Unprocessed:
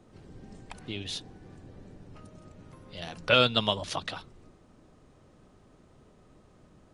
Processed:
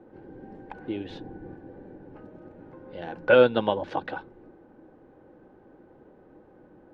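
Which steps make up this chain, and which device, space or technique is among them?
inside a cardboard box (LPF 2500 Hz 12 dB/oct; small resonant body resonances 340/500/800/1500 Hz, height 17 dB, ringing for 25 ms); 1.1–1.54 low shelf 190 Hz +10 dB; gain -6.5 dB

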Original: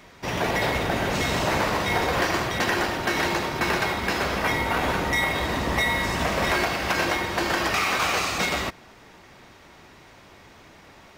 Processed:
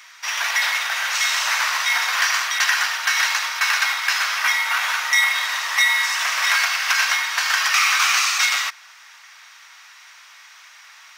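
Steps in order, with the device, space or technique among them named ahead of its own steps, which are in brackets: headphones lying on a table (HPF 1200 Hz 24 dB/oct; bell 5800 Hz +6 dB 0.34 oct); gain +7.5 dB

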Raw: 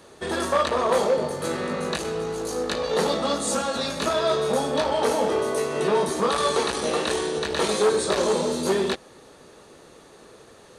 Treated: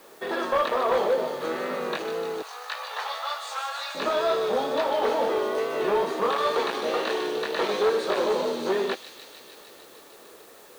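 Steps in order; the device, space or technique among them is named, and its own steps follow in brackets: tape answering machine (BPF 320–3100 Hz; soft clip -14 dBFS, distortion -22 dB; wow and flutter; white noise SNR 30 dB); 2.42–3.95 inverse Chebyshev high-pass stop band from 240 Hz, stop band 60 dB; thin delay 0.151 s, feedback 79%, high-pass 3800 Hz, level -5 dB

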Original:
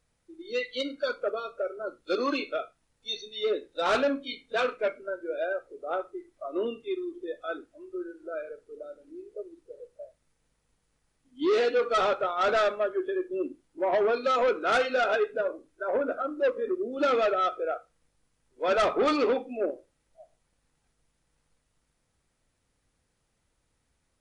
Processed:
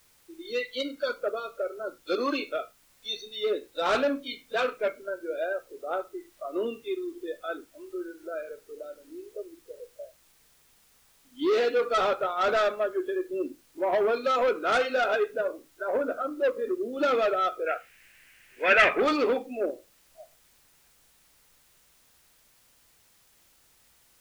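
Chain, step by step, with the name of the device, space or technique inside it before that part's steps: noise-reduction cassette on a plain deck (mismatched tape noise reduction encoder only; wow and flutter 15 cents; white noise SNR 33 dB); 17.66–19 band shelf 2100 Hz +15.5 dB 1.1 oct

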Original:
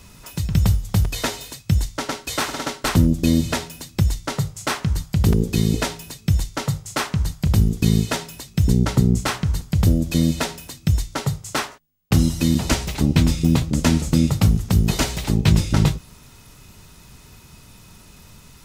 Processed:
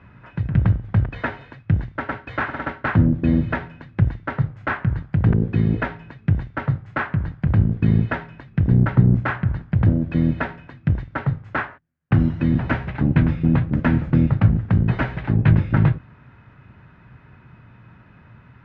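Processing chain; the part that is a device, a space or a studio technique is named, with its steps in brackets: sub-octave bass pedal (octaver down 2 oct, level -3 dB; speaker cabinet 75–2200 Hz, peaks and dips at 120 Hz +7 dB, 420 Hz -4 dB, 1600 Hz +8 dB); gain -1 dB

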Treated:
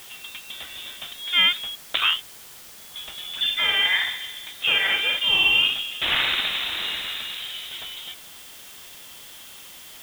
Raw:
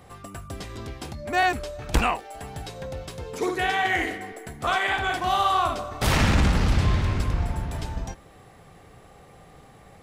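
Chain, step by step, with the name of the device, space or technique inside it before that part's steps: 1.75–2.96 gate -30 dBFS, range -21 dB; scrambled radio voice (BPF 330–2900 Hz; inverted band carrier 3900 Hz; white noise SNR 18 dB); gain +3.5 dB

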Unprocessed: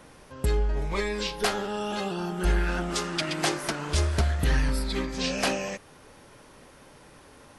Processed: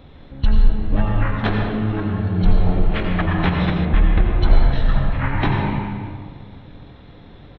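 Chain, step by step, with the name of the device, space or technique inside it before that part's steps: monster voice (pitch shift -11.5 st; formant shift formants -6 st; low shelf 120 Hz +7.5 dB; reverb RT60 1.9 s, pre-delay 77 ms, DRR 1 dB); 3.85–4.42 air absorption 270 m; gain +4.5 dB

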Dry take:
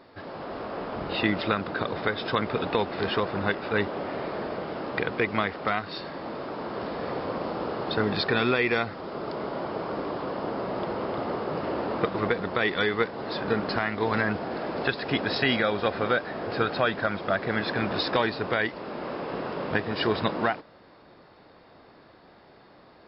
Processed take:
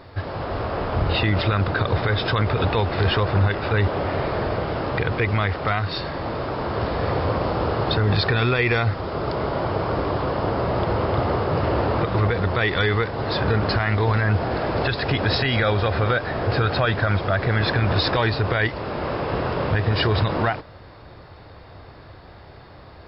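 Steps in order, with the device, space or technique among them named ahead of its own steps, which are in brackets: car stereo with a boomy subwoofer (resonant low shelf 140 Hz +12.5 dB, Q 1.5; limiter -19 dBFS, peak gain reduction 10 dB); gain +8 dB

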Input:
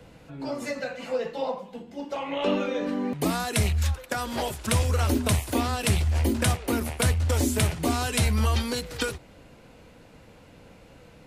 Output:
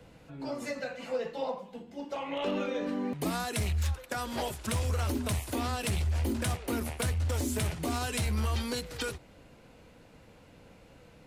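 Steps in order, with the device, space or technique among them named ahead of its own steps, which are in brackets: limiter into clipper (limiter -17 dBFS, peak gain reduction 4.5 dB; hard clip -20 dBFS, distortion -23 dB); gain -4.5 dB

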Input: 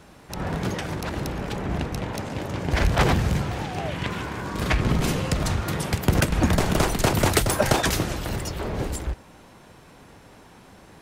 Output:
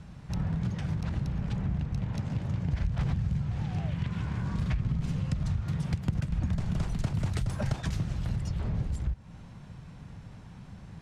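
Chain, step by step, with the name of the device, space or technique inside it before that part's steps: jukebox (LPF 7500 Hz 12 dB/oct; resonant low shelf 230 Hz +13 dB, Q 1.5; compressor 4:1, threshold -22 dBFS, peak gain reduction 18.5 dB); gain -6.5 dB

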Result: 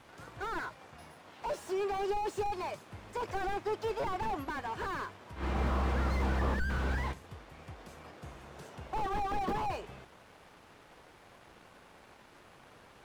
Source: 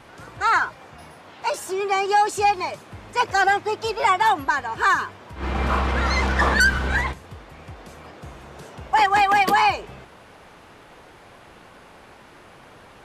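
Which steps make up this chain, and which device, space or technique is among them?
early transistor amplifier (crossover distortion -55 dBFS; slew limiter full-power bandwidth 42 Hz); gain -7 dB

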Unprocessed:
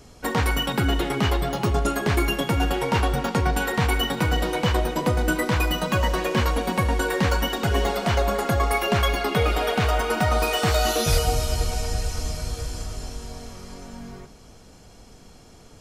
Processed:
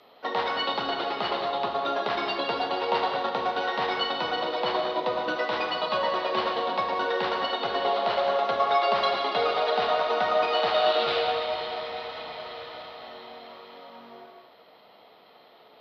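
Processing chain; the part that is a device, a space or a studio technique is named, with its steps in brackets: toy sound module (decimation joined by straight lines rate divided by 6×; pulse-width modulation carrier 13000 Hz; speaker cabinet 600–4900 Hz, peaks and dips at 640 Hz +4 dB, 1600 Hz -7 dB, 2300 Hz -6 dB, 3900 Hz +7 dB); non-linear reverb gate 0.25 s flat, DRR 2 dB

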